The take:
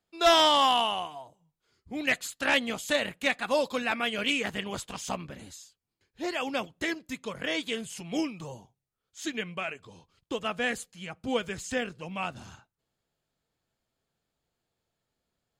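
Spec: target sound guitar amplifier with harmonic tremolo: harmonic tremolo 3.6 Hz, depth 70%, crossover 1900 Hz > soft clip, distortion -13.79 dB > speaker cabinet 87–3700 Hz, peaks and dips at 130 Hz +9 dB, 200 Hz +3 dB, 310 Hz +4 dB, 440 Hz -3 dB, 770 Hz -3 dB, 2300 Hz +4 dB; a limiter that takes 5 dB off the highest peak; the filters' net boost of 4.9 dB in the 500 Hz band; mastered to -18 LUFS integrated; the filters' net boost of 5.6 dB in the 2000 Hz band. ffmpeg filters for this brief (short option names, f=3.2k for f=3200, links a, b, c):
-filter_complex "[0:a]equalizer=f=500:t=o:g=7.5,equalizer=f=2k:t=o:g=4.5,alimiter=limit=-13dB:level=0:latency=1,acrossover=split=1900[a][b];[a]aeval=exprs='val(0)*(1-0.7/2+0.7/2*cos(2*PI*3.6*n/s))':c=same[c];[b]aeval=exprs='val(0)*(1-0.7/2-0.7/2*cos(2*PI*3.6*n/s))':c=same[d];[c][d]amix=inputs=2:normalize=0,asoftclip=threshold=-21dB,highpass=87,equalizer=f=130:t=q:w=4:g=9,equalizer=f=200:t=q:w=4:g=3,equalizer=f=310:t=q:w=4:g=4,equalizer=f=440:t=q:w=4:g=-3,equalizer=f=770:t=q:w=4:g=-3,equalizer=f=2.3k:t=q:w=4:g=4,lowpass=f=3.7k:w=0.5412,lowpass=f=3.7k:w=1.3066,volume=14dB"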